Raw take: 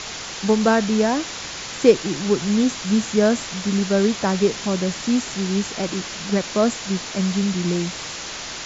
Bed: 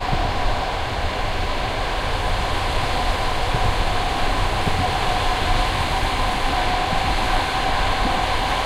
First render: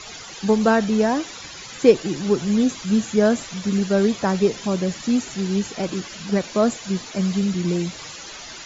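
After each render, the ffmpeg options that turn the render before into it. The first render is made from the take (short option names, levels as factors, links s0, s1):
-af "afftdn=nr=12:nf=-32"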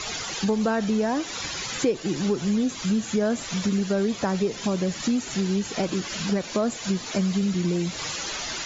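-filter_complex "[0:a]asplit=2[s0][s1];[s1]alimiter=limit=0.2:level=0:latency=1:release=63,volume=0.944[s2];[s0][s2]amix=inputs=2:normalize=0,acompressor=threshold=0.0631:ratio=3"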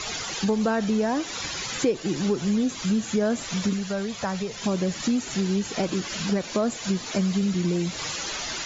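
-filter_complex "[0:a]asettb=1/sr,asplit=3[s0][s1][s2];[s0]atrim=end=3.734[s3];[s1]atrim=start=3.73:end=4.62,asetpts=PTS-STARTPTS,afade=t=in:d=0.004:c=qsin,afade=t=out:st=0.886:d=0.004:c=qsin,equalizer=f=310:w=1.5:g=-12.5[s4];[s2]atrim=start=4.616[s5];[s3][s4]acrossfade=d=0.004:c1=hsin:c2=qsin[s6];[s6][s5]acrossfade=d=0.004:c1=qsin:c2=hsin"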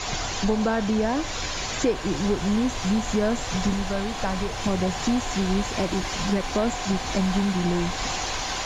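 -filter_complex "[1:a]volume=0.282[s0];[0:a][s0]amix=inputs=2:normalize=0"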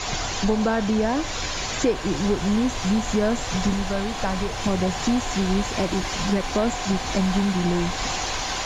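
-af "volume=1.19"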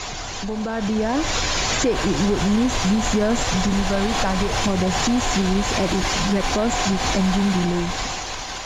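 -af "alimiter=limit=0.0944:level=0:latency=1:release=96,dynaudnorm=f=140:g=13:m=2.82"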